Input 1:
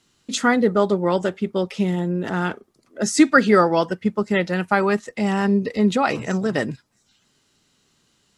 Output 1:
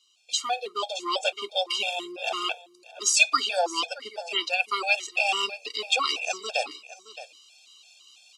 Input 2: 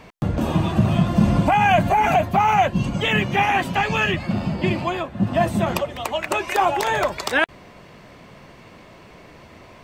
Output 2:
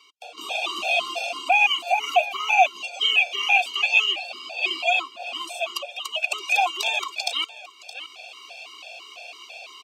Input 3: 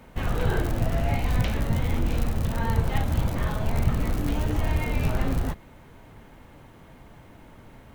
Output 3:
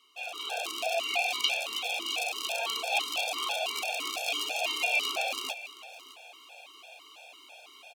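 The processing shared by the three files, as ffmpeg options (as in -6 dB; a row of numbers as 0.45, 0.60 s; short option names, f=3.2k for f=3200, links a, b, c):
-filter_complex "[0:a]tiltshelf=f=700:g=-8,acrossover=split=130[a][b];[a]acompressor=threshold=-48dB:ratio=6[c];[b]aexciter=amount=14.8:drive=2.5:freq=2.6k[d];[c][d]amix=inputs=2:normalize=0,asplit=3[e][f][g];[e]bandpass=f=730:t=q:w=8,volume=0dB[h];[f]bandpass=f=1.09k:t=q:w=8,volume=-6dB[i];[g]bandpass=f=2.44k:t=q:w=8,volume=-9dB[j];[h][i][j]amix=inputs=3:normalize=0,asplit=2[k][l];[l]aecho=0:1:619:0.133[m];[k][m]amix=inputs=2:normalize=0,dynaudnorm=f=160:g=7:m=11dB,lowshelf=f=230:t=q:w=3:g=-10,afftfilt=real='re*gt(sin(2*PI*3*pts/sr)*(1-2*mod(floor(b*sr/1024/460),2)),0)':imag='im*gt(sin(2*PI*3*pts/sr)*(1-2*mod(floor(b*sr/1024/460),2)),0)':win_size=1024:overlap=0.75,volume=-3dB"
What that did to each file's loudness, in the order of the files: -5.5, -2.0, -3.0 LU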